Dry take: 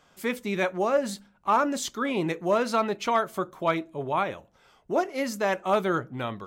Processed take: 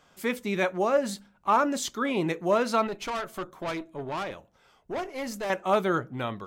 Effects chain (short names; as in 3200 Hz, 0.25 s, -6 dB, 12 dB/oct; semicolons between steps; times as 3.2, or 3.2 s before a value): 2.87–5.5 tube stage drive 28 dB, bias 0.5